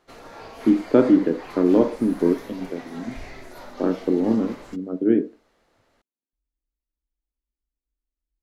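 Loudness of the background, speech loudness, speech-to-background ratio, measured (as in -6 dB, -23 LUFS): -41.0 LUFS, -21.0 LUFS, 20.0 dB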